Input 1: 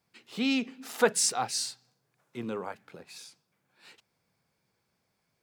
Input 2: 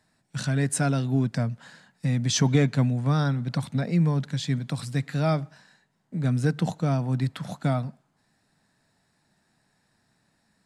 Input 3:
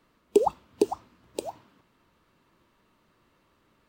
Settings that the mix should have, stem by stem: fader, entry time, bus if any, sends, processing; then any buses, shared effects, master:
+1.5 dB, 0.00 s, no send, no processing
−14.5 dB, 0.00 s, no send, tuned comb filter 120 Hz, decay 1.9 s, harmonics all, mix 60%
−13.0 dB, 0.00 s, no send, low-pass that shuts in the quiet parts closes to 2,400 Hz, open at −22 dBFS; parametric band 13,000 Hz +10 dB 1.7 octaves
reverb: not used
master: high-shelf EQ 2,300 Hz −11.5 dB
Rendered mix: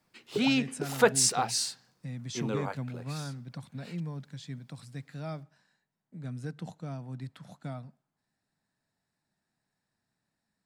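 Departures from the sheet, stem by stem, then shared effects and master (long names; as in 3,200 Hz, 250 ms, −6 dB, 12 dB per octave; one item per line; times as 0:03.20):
stem 2: missing tuned comb filter 120 Hz, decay 1.9 s, harmonics all, mix 60%
stem 3: missing parametric band 13,000 Hz +10 dB 1.7 octaves
master: missing high-shelf EQ 2,300 Hz −11.5 dB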